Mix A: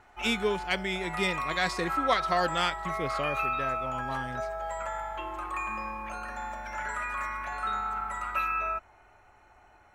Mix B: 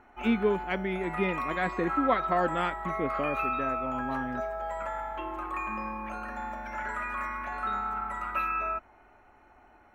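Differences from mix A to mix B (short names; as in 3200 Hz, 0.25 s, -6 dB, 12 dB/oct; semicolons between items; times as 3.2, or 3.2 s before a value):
speech: add Gaussian blur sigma 2.8 samples; master: add graphic EQ 125/250/4000/8000 Hz -6/+9/-4/-10 dB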